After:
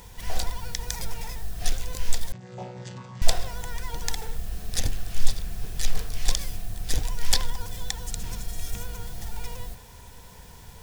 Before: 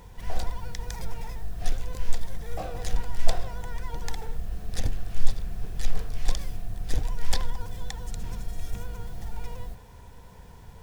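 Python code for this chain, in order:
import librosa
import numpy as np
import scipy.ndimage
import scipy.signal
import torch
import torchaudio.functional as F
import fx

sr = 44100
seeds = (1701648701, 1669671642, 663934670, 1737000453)

y = fx.chord_vocoder(x, sr, chord='bare fifth', root=47, at=(2.32, 3.22))
y = fx.high_shelf(y, sr, hz=2300.0, db=11.5)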